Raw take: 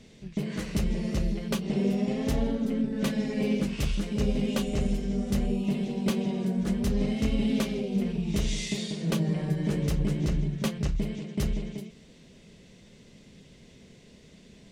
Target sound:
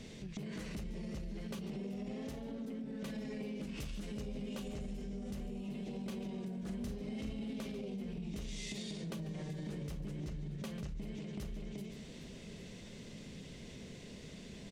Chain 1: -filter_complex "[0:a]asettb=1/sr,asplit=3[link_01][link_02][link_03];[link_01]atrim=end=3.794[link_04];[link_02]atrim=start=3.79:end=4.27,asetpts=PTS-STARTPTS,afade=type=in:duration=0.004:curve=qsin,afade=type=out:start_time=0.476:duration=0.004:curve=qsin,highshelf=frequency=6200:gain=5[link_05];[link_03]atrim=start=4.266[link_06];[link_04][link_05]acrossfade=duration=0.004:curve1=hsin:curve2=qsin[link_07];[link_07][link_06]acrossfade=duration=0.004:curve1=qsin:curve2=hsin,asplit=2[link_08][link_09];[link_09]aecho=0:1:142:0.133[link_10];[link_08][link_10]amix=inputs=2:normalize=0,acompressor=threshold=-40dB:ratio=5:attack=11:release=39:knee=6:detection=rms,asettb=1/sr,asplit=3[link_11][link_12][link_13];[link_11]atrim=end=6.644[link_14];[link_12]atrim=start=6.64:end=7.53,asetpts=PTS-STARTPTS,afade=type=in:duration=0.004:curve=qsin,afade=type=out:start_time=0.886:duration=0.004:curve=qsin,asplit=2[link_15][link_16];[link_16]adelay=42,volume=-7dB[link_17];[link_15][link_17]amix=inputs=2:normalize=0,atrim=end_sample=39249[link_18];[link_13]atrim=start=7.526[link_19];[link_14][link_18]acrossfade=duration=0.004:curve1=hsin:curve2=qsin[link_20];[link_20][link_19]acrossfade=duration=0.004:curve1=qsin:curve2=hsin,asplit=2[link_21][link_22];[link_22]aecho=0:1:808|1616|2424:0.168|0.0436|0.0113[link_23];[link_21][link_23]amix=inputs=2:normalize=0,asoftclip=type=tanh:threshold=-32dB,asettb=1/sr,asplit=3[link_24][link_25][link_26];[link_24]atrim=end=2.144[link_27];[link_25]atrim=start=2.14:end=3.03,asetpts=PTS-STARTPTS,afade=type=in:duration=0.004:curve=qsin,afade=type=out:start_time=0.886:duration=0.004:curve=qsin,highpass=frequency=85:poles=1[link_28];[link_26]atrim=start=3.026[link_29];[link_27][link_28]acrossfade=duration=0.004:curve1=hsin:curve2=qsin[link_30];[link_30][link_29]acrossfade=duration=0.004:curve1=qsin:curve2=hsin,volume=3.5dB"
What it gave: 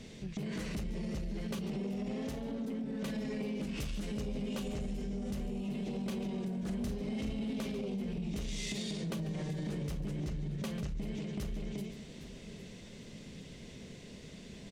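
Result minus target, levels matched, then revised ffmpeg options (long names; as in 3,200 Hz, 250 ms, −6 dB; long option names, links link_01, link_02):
downward compressor: peak gain reduction −5.5 dB
-filter_complex "[0:a]asettb=1/sr,asplit=3[link_01][link_02][link_03];[link_01]atrim=end=3.794[link_04];[link_02]atrim=start=3.79:end=4.27,asetpts=PTS-STARTPTS,afade=type=in:duration=0.004:curve=qsin,afade=type=out:start_time=0.476:duration=0.004:curve=qsin,highshelf=frequency=6200:gain=5[link_05];[link_03]atrim=start=4.266[link_06];[link_04][link_05]acrossfade=duration=0.004:curve1=hsin:curve2=qsin[link_07];[link_07][link_06]acrossfade=duration=0.004:curve1=qsin:curve2=hsin,asplit=2[link_08][link_09];[link_09]aecho=0:1:142:0.133[link_10];[link_08][link_10]amix=inputs=2:normalize=0,acompressor=threshold=-47dB:ratio=5:attack=11:release=39:knee=6:detection=rms,asettb=1/sr,asplit=3[link_11][link_12][link_13];[link_11]atrim=end=6.644[link_14];[link_12]atrim=start=6.64:end=7.53,asetpts=PTS-STARTPTS,afade=type=in:duration=0.004:curve=qsin,afade=type=out:start_time=0.886:duration=0.004:curve=qsin,asplit=2[link_15][link_16];[link_16]adelay=42,volume=-7dB[link_17];[link_15][link_17]amix=inputs=2:normalize=0,atrim=end_sample=39249[link_18];[link_13]atrim=start=7.526[link_19];[link_14][link_18]acrossfade=duration=0.004:curve1=hsin:curve2=qsin[link_20];[link_20][link_19]acrossfade=duration=0.004:curve1=qsin:curve2=hsin,asplit=2[link_21][link_22];[link_22]aecho=0:1:808|1616|2424:0.168|0.0436|0.0113[link_23];[link_21][link_23]amix=inputs=2:normalize=0,asoftclip=type=tanh:threshold=-32dB,asettb=1/sr,asplit=3[link_24][link_25][link_26];[link_24]atrim=end=2.144[link_27];[link_25]atrim=start=2.14:end=3.03,asetpts=PTS-STARTPTS,afade=type=in:duration=0.004:curve=qsin,afade=type=out:start_time=0.886:duration=0.004:curve=qsin,highpass=frequency=85:poles=1[link_28];[link_26]atrim=start=3.026[link_29];[link_27][link_28]acrossfade=duration=0.004:curve1=hsin:curve2=qsin[link_30];[link_30][link_29]acrossfade=duration=0.004:curve1=qsin:curve2=hsin,volume=3.5dB"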